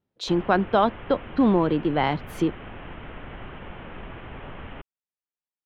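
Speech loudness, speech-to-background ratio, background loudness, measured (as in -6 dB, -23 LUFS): -23.5 LUFS, 17.0 dB, -40.5 LUFS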